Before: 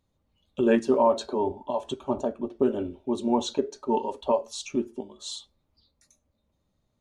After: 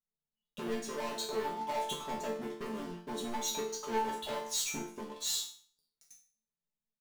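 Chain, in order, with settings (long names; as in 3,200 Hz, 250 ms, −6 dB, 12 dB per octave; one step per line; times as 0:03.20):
comb filter 4.7 ms, depth 61%
downward compressor 10 to 1, threshold −26 dBFS, peak gain reduction 13.5 dB
leveller curve on the samples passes 5
high-shelf EQ 4,100 Hz +8.5 dB
resonators tuned to a chord D3 minor, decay 0.45 s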